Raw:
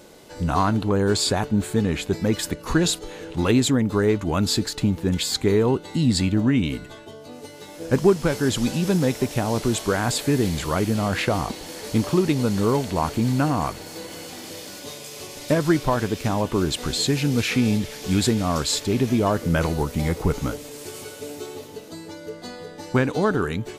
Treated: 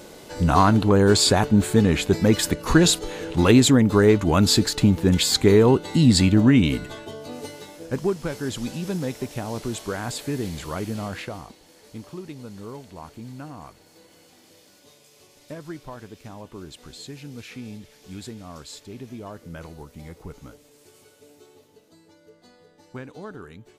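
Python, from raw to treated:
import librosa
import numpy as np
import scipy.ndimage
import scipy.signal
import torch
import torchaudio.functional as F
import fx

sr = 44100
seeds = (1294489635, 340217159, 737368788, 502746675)

y = fx.gain(x, sr, db=fx.line((7.48, 4.0), (7.9, -7.0), (11.03, -7.0), (11.58, -17.0)))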